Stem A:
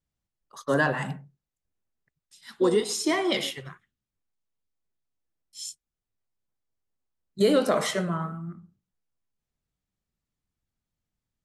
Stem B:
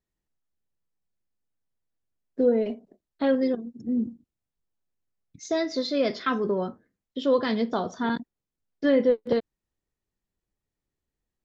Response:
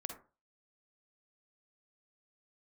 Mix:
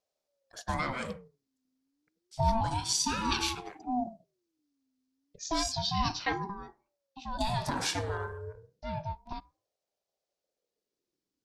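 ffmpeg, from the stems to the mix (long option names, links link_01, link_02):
-filter_complex "[0:a]acompressor=threshold=-23dB:ratio=6,volume=-3dB,asplit=3[link_01][link_02][link_03];[link_02]volume=-17.5dB[link_04];[1:a]volume=-3.5dB,afade=type=out:start_time=6.31:duration=0.23:silence=0.298538,asplit=2[link_05][link_06];[link_06]volume=-17dB[link_07];[link_03]apad=whole_len=504889[link_08];[link_05][link_08]sidechaincompress=threshold=-37dB:ratio=8:attack=12:release=627[link_09];[2:a]atrim=start_sample=2205[link_10];[link_04][link_07]amix=inputs=2:normalize=0[link_11];[link_11][link_10]afir=irnorm=-1:irlink=0[link_12];[link_01][link_09][link_12]amix=inputs=3:normalize=0,equalizer=frequency=5000:width_type=o:width=0.91:gain=10,aeval=exprs='val(0)*sin(2*PI*430*n/s+430*0.4/0.3*sin(2*PI*0.3*n/s))':channel_layout=same"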